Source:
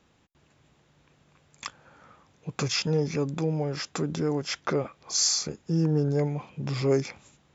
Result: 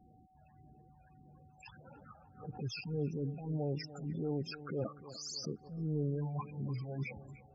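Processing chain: treble shelf 6.7 kHz -8 dB; reverse; compression 4:1, threshold -39 dBFS, peak gain reduction 16.5 dB; reverse; transient shaper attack -7 dB, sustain 0 dB; phase shifter stages 12, 1.7 Hz, lowest notch 330–3000 Hz; whistle 750 Hz -71 dBFS; loudest bins only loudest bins 16; on a send: bucket-brigade echo 297 ms, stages 4096, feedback 45%, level -15 dB; on the sum: swell ahead of each attack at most 140 dB/s; trim +4 dB

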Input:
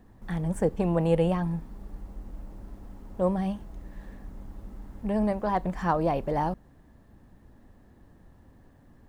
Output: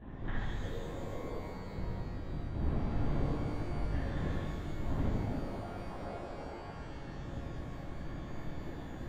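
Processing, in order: low-pass that closes with the level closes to 780 Hz, closed at -25 dBFS; inverted gate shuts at -32 dBFS, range -28 dB; LPC vocoder at 8 kHz whisper; pitch-shifted reverb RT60 2.8 s, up +12 st, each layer -8 dB, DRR -10.5 dB; trim +1.5 dB

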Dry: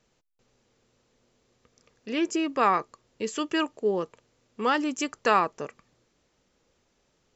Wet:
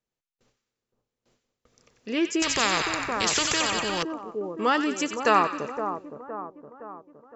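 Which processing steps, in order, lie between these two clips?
gate with hold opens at -57 dBFS; two-band feedback delay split 1.2 kHz, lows 515 ms, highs 92 ms, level -8 dB; 2.42–4.03 s: spectrum-flattening compressor 4:1; trim +1.5 dB

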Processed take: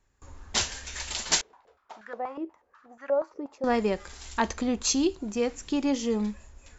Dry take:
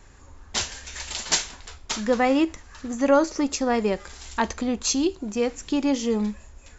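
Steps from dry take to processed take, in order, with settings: gate with hold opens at -40 dBFS; gain riding 2 s; 1.41–3.64 s: step-sequenced band-pass 8.3 Hz 440–1500 Hz; trim -3.5 dB

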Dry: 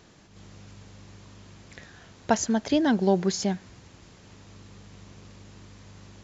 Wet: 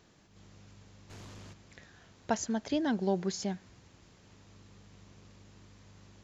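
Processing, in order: 1.09–1.52 s: sine folder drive 10 dB -> 6 dB, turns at -37 dBFS; trim -8 dB

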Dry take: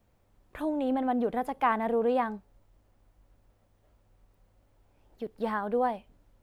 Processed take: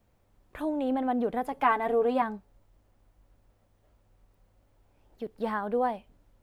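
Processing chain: 1.52–2.22 s: comb 7 ms, depth 74%

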